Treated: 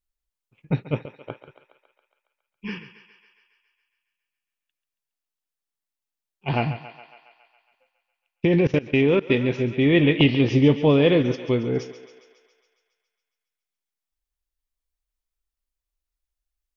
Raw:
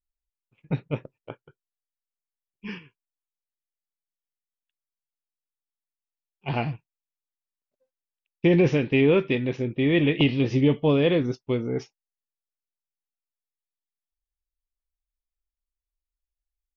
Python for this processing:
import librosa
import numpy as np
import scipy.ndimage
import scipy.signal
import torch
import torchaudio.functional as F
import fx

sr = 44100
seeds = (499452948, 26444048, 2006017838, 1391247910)

y = fx.echo_thinned(x, sr, ms=138, feedback_pct=67, hz=390.0, wet_db=-12.0)
y = fx.level_steps(y, sr, step_db=21, at=(8.45, 9.3))
y = y * 10.0 ** (3.5 / 20.0)